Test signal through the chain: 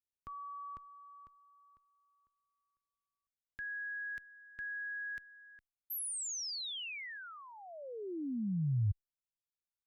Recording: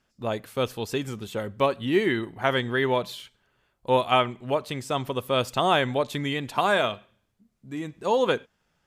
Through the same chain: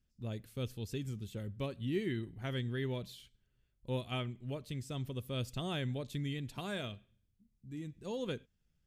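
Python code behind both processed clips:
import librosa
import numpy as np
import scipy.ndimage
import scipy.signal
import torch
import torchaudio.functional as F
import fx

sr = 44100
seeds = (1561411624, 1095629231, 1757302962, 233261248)

y = fx.tone_stack(x, sr, knobs='10-0-1')
y = y * librosa.db_to_amplitude(8.5)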